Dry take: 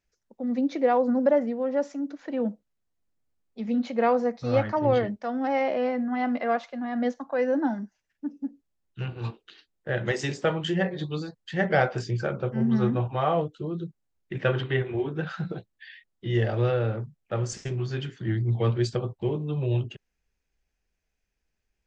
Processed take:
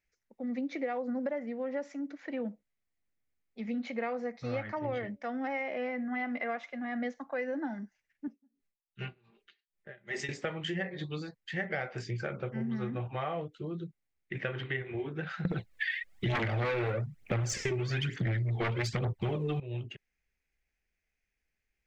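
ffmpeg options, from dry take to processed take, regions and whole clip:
ffmpeg -i in.wav -filter_complex "[0:a]asettb=1/sr,asplit=3[link_01][link_02][link_03];[link_01]atrim=end=4.794[link_04];[link_02]atrim=start=4.79:end=7.03,asetpts=PTS-STARTPTS,afade=type=in:duration=0.004:curve=qsin,afade=type=out:start_time=2.236:duration=0.004:curve=qsin,bandreject=frequency=4400:width=9.9,bandreject=frequency=285.4:width_type=h:width=4,bandreject=frequency=570.8:width_type=h:width=4[link_05];[link_03]atrim=start=7.026[link_06];[link_04][link_05]acrossfade=duration=0.004:curve1=hsin:curve2=qsin[link_07];[link_07][link_06]acrossfade=duration=0.004:curve1=qsin:curve2=hsin,asettb=1/sr,asplit=3[link_08][link_09][link_10];[link_08]atrim=end=8.274[link_11];[link_09]atrim=start=8.27:end=10.29,asetpts=PTS-STARTPTS,afade=type=in:duration=0.004:curve=qsin,afade=type=out:start_time=2.016:duration=0.004:curve=qsin,aecho=1:1:5:0.61,atrim=end_sample=89082,aeval=exprs='val(0)*pow(10,-30*(0.5-0.5*cos(2*PI*2.6*n/s))/20)':channel_layout=same[link_12];[link_10]atrim=start=10.286[link_13];[link_11][link_12]acrossfade=duration=0.004:curve1=hsin:curve2=qsin[link_14];[link_14][link_13]acrossfade=duration=0.004:curve1=qsin:curve2=hsin,asettb=1/sr,asplit=3[link_15][link_16][link_17];[link_15]atrim=end=15.454[link_18];[link_16]atrim=start=15.45:end=19.6,asetpts=PTS-STARTPTS,afade=type=in:duration=0.004:curve=qsin,afade=type=out:start_time=4.146:duration=0.004:curve=qsin,aphaser=in_gain=1:out_gain=1:delay=2.8:decay=0.62:speed=1.1:type=triangular,aeval=exprs='0.531*sin(PI/2*5.62*val(0)/0.531)':channel_layout=same[link_19];[link_17]atrim=start=19.596[link_20];[link_18][link_19]acrossfade=duration=0.004:curve1=hsin:curve2=qsin[link_21];[link_21][link_20]acrossfade=duration=0.004:curve1=qsin:curve2=hsin,equalizer=frequency=2100:width=2.3:gain=11,bandreject=frequency=980:width=20,acompressor=threshold=-25dB:ratio=6,volume=-6dB" out.wav

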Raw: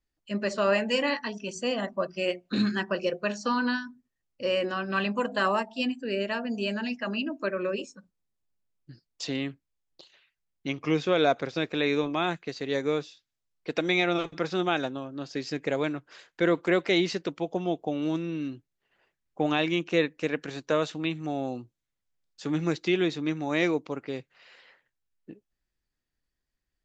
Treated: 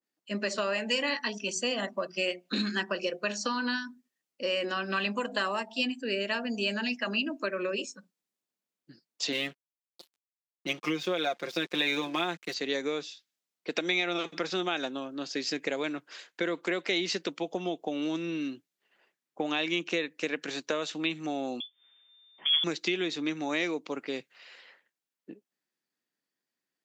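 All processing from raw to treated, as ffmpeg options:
ffmpeg -i in.wav -filter_complex "[0:a]asettb=1/sr,asplit=3[link_01][link_02][link_03];[link_01]atrim=end=9.324[link_04];[link_02]atrim=start=9.32:end=12.54,asetpts=PTS-STARTPTS,afade=type=in:duration=0.004:curve=qsin,afade=type=out:start_time=3.216:duration=0.004:curve=qsin,aecho=1:1:5.7:0.67,atrim=end_sample=142002,aeval=exprs='sgn(val(0))*max(abs(val(0))-0.00316,0)':channel_layout=same[link_05];[link_03]atrim=start=12.536[link_06];[link_04][link_05]acrossfade=duration=0.004:curve1=hsin:curve2=qsin[link_07];[link_07][link_06]acrossfade=duration=0.004:curve1=qsin:curve2=hsin,asettb=1/sr,asplit=3[link_08][link_09][link_10];[link_08]atrim=end=21.604[link_11];[link_09]atrim=start=21.6:end=22.64,asetpts=PTS-STARTPTS,afade=type=in:duration=0.004:curve=qsin,afade=type=out:start_time=1.036:duration=0.004:curve=qsin,lowpass=frequency=3100:width_type=q:width=0.5098,lowpass=frequency=3100:width_type=q:width=0.6013,lowpass=frequency=3100:width_type=q:width=0.9,lowpass=frequency=3100:width_type=q:width=2.563,afreqshift=-3600,acompressor=mode=upward:threshold=-50dB:ratio=2.5:attack=3.2:release=140:knee=2.83:detection=peak[link_12];[link_10]atrim=start=22.636[link_13];[link_11][link_12]acrossfade=duration=0.004:curve1=hsin:curve2=qsin[link_14];[link_14][link_13]acrossfade=duration=0.004:curve1=qsin:curve2=hsin,highpass=frequency=190:width=0.5412,highpass=frequency=190:width=1.3066,acompressor=threshold=-28dB:ratio=6,adynamicequalizer=threshold=0.00316:dfrequency=1800:dqfactor=0.7:tfrequency=1800:tqfactor=0.7:attack=5:release=100:ratio=0.375:range=3.5:mode=boostabove:tftype=highshelf" out.wav

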